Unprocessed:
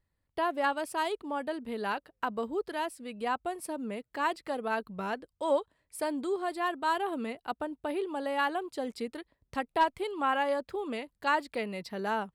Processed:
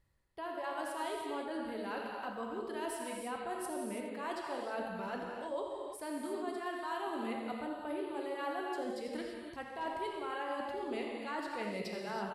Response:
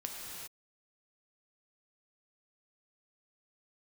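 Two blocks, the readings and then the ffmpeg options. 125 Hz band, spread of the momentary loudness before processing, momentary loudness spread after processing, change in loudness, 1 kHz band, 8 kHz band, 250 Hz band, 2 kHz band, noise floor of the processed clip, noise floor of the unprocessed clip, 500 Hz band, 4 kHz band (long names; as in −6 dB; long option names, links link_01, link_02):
can't be measured, 8 LU, 3 LU, −7.0 dB, −8.0 dB, −2.5 dB, −4.5 dB, −8.5 dB, −47 dBFS, −81 dBFS, −6.0 dB, −6.5 dB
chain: -filter_complex "[0:a]areverse,acompressor=threshold=-44dB:ratio=6,areverse,aecho=1:1:84:0.282[link_01];[1:a]atrim=start_sample=2205,afade=type=out:start_time=0.25:duration=0.01,atrim=end_sample=11466,asetrate=25578,aresample=44100[link_02];[link_01][link_02]afir=irnorm=-1:irlink=0,volume=4dB"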